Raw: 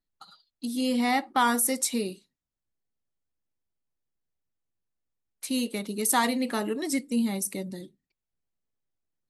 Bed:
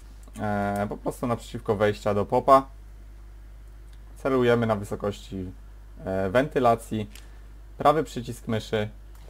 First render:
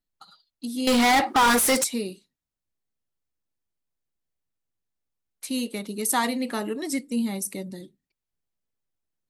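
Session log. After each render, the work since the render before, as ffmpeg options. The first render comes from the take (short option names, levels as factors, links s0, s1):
-filter_complex "[0:a]asettb=1/sr,asplit=3[s0][s1][s2];[s0]atrim=end=0.874[s3];[s1]atrim=start=0.87:end=1.84,asetpts=PTS-STARTPTS,afade=t=in:d=0.004:c=qsin,afade=t=out:st=0.966:d=0.004:c=qsin,asplit=2[s4][s5];[s5]highpass=f=720:p=1,volume=28.2,asoftclip=type=tanh:threshold=0.237[s6];[s4][s6]amix=inputs=2:normalize=0,lowpass=f=6600:p=1,volume=0.501[s7];[s2]atrim=start=1.836[s8];[s3][s7]acrossfade=d=0.004:c1=hsin:c2=qsin[s9];[s9][s8]acrossfade=d=0.004:c1=qsin:c2=hsin"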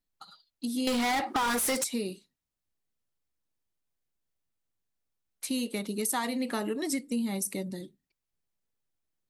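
-af "acompressor=threshold=0.0447:ratio=6"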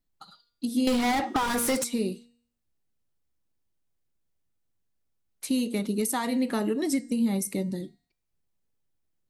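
-af "lowshelf=f=490:g=7.5,bandreject=f=237.3:t=h:w=4,bandreject=f=474.6:t=h:w=4,bandreject=f=711.9:t=h:w=4,bandreject=f=949.2:t=h:w=4,bandreject=f=1186.5:t=h:w=4,bandreject=f=1423.8:t=h:w=4,bandreject=f=1661.1:t=h:w=4,bandreject=f=1898.4:t=h:w=4,bandreject=f=2135.7:t=h:w=4,bandreject=f=2373:t=h:w=4,bandreject=f=2610.3:t=h:w=4,bandreject=f=2847.6:t=h:w=4,bandreject=f=3084.9:t=h:w=4,bandreject=f=3322.2:t=h:w=4,bandreject=f=3559.5:t=h:w=4,bandreject=f=3796.8:t=h:w=4,bandreject=f=4034.1:t=h:w=4,bandreject=f=4271.4:t=h:w=4,bandreject=f=4508.7:t=h:w=4,bandreject=f=4746:t=h:w=4,bandreject=f=4983.3:t=h:w=4,bandreject=f=5220.6:t=h:w=4,bandreject=f=5457.9:t=h:w=4,bandreject=f=5695.2:t=h:w=4,bandreject=f=5932.5:t=h:w=4,bandreject=f=6169.8:t=h:w=4,bandreject=f=6407.1:t=h:w=4,bandreject=f=6644.4:t=h:w=4,bandreject=f=6881.7:t=h:w=4,bandreject=f=7119:t=h:w=4,bandreject=f=7356.3:t=h:w=4,bandreject=f=7593.6:t=h:w=4,bandreject=f=7830.9:t=h:w=4,bandreject=f=8068.2:t=h:w=4,bandreject=f=8305.5:t=h:w=4,bandreject=f=8542.8:t=h:w=4,bandreject=f=8780.1:t=h:w=4,bandreject=f=9017.4:t=h:w=4"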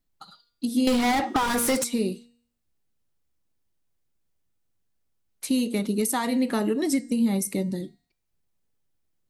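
-af "volume=1.33"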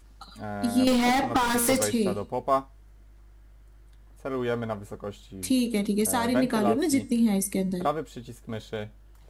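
-filter_complex "[1:a]volume=0.422[s0];[0:a][s0]amix=inputs=2:normalize=0"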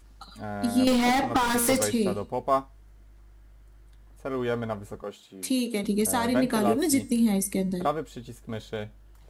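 -filter_complex "[0:a]asettb=1/sr,asplit=3[s0][s1][s2];[s0]atrim=end=5.024[s3];[s1]atrim=start=5.02:end=5.84,asetpts=PTS-STARTPTS,afade=t=in:d=0.004:c=qsin,afade=t=out:st=0.816:d=0.004:c=qsin,highpass=240[s4];[s2]atrim=start=5.836[s5];[s3][s4]acrossfade=d=0.004:c1=hsin:c2=qsin[s6];[s6][s5]acrossfade=d=0.004:c1=qsin:c2=hsin,asettb=1/sr,asplit=3[s7][s8][s9];[s7]atrim=end=6.524[s10];[s8]atrim=start=6.52:end=7.32,asetpts=PTS-STARTPTS,afade=t=in:d=0.004:c=qsin,afade=t=out:st=0.796:d=0.004:c=qsin,highshelf=f=7500:g=8.5[s11];[s9]atrim=start=7.316[s12];[s10][s11]acrossfade=d=0.004:c1=hsin:c2=qsin[s13];[s13][s12]acrossfade=d=0.004:c1=qsin:c2=hsin"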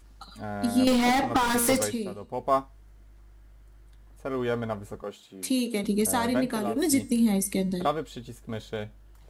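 -filter_complex "[0:a]asettb=1/sr,asplit=3[s0][s1][s2];[s0]atrim=end=7.464[s3];[s1]atrim=start=7.46:end=8.19,asetpts=PTS-STARTPTS,afade=t=in:d=0.004:c=qsin,afade=t=out:st=0.726:d=0.004:c=qsin,equalizer=f=3500:w=1.5:g=5.5[s4];[s2]atrim=start=8.186[s5];[s3][s4]acrossfade=d=0.004:c1=hsin:c2=qsin[s6];[s6][s5]acrossfade=d=0.004:c1=qsin:c2=hsin,asplit=4[s7][s8][s9][s10];[s7]atrim=end=2.05,asetpts=PTS-STARTPTS,afade=t=out:st=1.75:d=0.3:silence=0.354813[s11];[s8]atrim=start=2.05:end=2.18,asetpts=PTS-STARTPTS,volume=0.355[s12];[s9]atrim=start=2.18:end=6.76,asetpts=PTS-STARTPTS,afade=t=in:d=0.3:silence=0.354813,afade=t=out:st=4.02:d=0.56:silence=0.398107[s13];[s10]atrim=start=6.76,asetpts=PTS-STARTPTS,afade=t=in:d=0.004:c=hsin:silence=0.398107[s14];[s11][s12][s13][s14]concat=n=4:v=0:a=1"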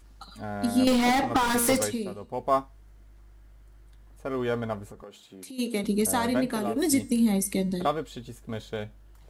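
-filter_complex "[0:a]asplit=3[s0][s1][s2];[s0]afade=t=out:st=4.84:d=0.02[s3];[s1]acompressor=threshold=0.01:ratio=6:attack=3.2:release=140:knee=1:detection=peak,afade=t=in:st=4.84:d=0.02,afade=t=out:st=5.58:d=0.02[s4];[s2]afade=t=in:st=5.58:d=0.02[s5];[s3][s4][s5]amix=inputs=3:normalize=0"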